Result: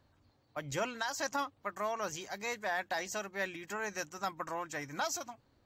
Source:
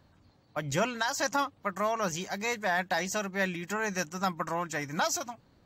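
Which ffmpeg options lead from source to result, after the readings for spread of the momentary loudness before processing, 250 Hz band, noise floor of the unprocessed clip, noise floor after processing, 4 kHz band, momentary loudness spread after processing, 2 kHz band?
5 LU, −9.5 dB, −64 dBFS, −71 dBFS, −6.0 dB, 5 LU, −6.0 dB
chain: -af "equalizer=frequency=180:width_type=o:width=0.25:gain=-13.5,volume=-6dB"

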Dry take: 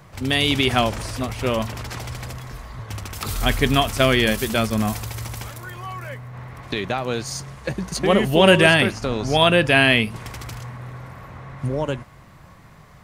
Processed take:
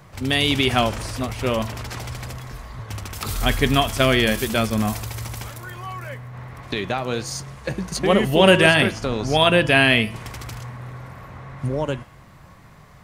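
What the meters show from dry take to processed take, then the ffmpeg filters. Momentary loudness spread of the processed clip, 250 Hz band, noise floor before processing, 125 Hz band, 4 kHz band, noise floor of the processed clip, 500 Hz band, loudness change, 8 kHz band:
21 LU, 0.0 dB, −47 dBFS, 0.0 dB, 0.0 dB, −47 dBFS, 0.0 dB, 0.0 dB, 0.0 dB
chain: -af "bandreject=frequency=165.2:width_type=h:width=4,bandreject=frequency=330.4:width_type=h:width=4,bandreject=frequency=495.6:width_type=h:width=4,bandreject=frequency=660.8:width_type=h:width=4,bandreject=frequency=826:width_type=h:width=4,bandreject=frequency=991.2:width_type=h:width=4,bandreject=frequency=1156.4:width_type=h:width=4,bandreject=frequency=1321.6:width_type=h:width=4,bandreject=frequency=1486.8:width_type=h:width=4,bandreject=frequency=1652:width_type=h:width=4,bandreject=frequency=1817.2:width_type=h:width=4,bandreject=frequency=1982.4:width_type=h:width=4,bandreject=frequency=2147.6:width_type=h:width=4,bandreject=frequency=2312.8:width_type=h:width=4,bandreject=frequency=2478:width_type=h:width=4,bandreject=frequency=2643.2:width_type=h:width=4,bandreject=frequency=2808.4:width_type=h:width=4,bandreject=frequency=2973.6:width_type=h:width=4,bandreject=frequency=3138.8:width_type=h:width=4,bandreject=frequency=3304:width_type=h:width=4,bandreject=frequency=3469.2:width_type=h:width=4"

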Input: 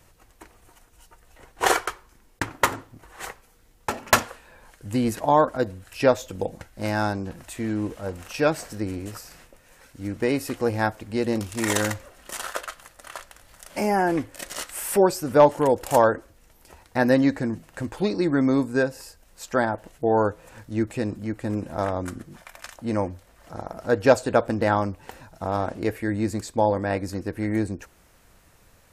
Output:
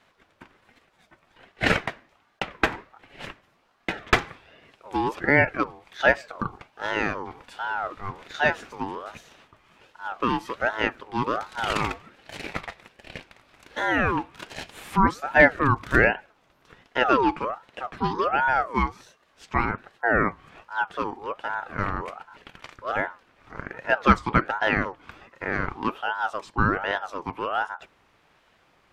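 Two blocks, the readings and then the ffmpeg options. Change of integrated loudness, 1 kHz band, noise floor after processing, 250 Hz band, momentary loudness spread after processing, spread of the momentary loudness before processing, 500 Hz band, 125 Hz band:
−0.5 dB, +1.0 dB, −64 dBFS, −5.0 dB, 18 LU, 18 LU, −5.5 dB, −2.5 dB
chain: -filter_complex "[0:a]acrossover=split=170 4400:gain=0.2 1 0.1[link_01][link_02][link_03];[link_01][link_02][link_03]amix=inputs=3:normalize=0,aeval=exprs='val(0)*sin(2*PI*890*n/s+890*0.35/1.3*sin(2*PI*1.3*n/s))':channel_layout=same,volume=2dB"

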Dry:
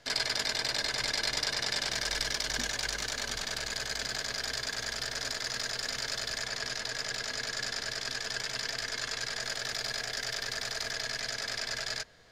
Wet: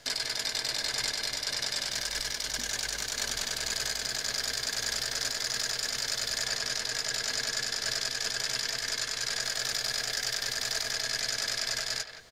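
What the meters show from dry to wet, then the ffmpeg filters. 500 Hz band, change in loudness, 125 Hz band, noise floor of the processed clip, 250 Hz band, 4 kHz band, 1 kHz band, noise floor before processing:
−1.0 dB, +2.5 dB, −1.5 dB, −40 dBFS, −1.5 dB, +2.5 dB, −1.0 dB, −43 dBFS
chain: -filter_complex "[0:a]highshelf=frequency=5400:gain=11.5,alimiter=limit=-21dB:level=0:latency=1:release=153,asplit=2[link_01][link_02];[link_02]adelay=170,highpass=300,lowpass=3400,asoftclip=type=hard:threshold=-29.5dB,volume=-8dB[link_03];[link_01][link_03]amix=inputs=2:normalize=0,volume=2.5dB"

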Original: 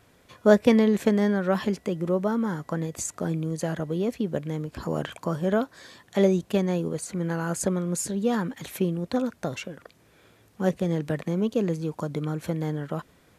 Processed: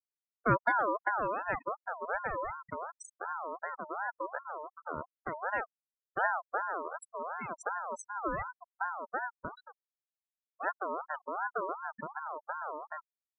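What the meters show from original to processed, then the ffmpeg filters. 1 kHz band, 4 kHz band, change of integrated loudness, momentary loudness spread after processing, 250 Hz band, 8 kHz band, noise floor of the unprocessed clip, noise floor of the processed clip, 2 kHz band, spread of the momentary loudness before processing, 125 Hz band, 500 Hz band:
+2.5 dB, below −25 dB, −10.0 dB, 11 LU, −22.0 dB, −19.5 dB, −60 dBFS, below −85 dBFS, +1.5 dB, 10 LU, −18.5 dB, −13.5 dB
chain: -filter_complex "[0:a]afftfilt=real='re*gte(hypot(re,im),0.126)':imag='im*gte(hypot(re,im),0.126)':win_size=1024:overlap=0.75,equalizer=frequency=970:width=7:gain=13.5,acrossover=split=200|1300|4300[link_01][link_02][link_03][link_04];[link_03]acompressor=threshold=-51dB:ratio=12[link_05];[link_01][link_02][link_05][link_04]amix=inputs=4:normalize=0,aeval=exprs='val(0)*sin(2*PI*1000*n/s+1000*0.25/2.7*sin(2*PI*2.7*n/s))':channel_layout=same,volume=-7.5dB"

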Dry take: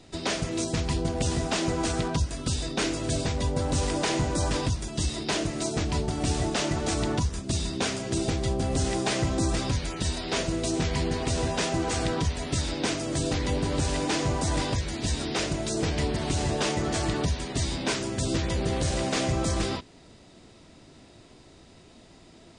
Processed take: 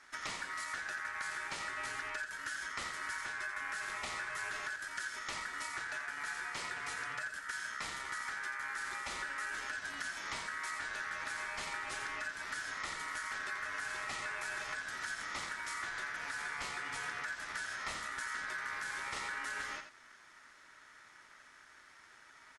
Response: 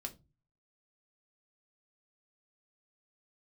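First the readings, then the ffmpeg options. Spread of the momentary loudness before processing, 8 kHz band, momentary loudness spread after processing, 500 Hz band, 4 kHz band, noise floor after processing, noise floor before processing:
3 LU, −13.5 dB, 18 LU, −24.0 dB, −13.5 dB, −60 dBFS, −53 dBFS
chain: -filter_complex "[0:a]acompressor=threshold=-31dB:ratio=6,aeval=exprs='val(0)*sin(2*PI*1600*n/s)':channel_layout=same,asplit=2[link_01][link_02];[link_02]aecho=0:1:86:0.376[link_03];[link_01][link_03]amix=inputs=2:normalize=0,volume=-4.5dB"

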